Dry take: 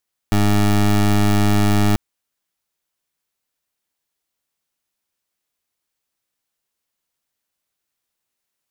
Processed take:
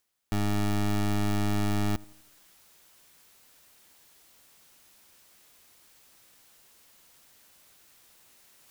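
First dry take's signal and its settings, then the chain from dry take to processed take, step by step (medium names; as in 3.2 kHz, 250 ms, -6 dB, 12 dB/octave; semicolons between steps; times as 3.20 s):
pulse 103 Hz, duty 20% -14.5 dBFS 1.64 s
peak limiter -26 dBFS; reverse; upward compressor, threshold -41 dBFS; reverse; filtered feedback delay 84 ms, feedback 47%, level -22 dB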